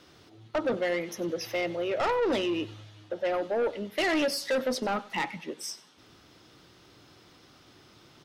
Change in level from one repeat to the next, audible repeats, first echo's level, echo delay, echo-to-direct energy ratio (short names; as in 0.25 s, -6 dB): -10.0 dB, 2, -20.0 dB, 96 ms, -19.5 dB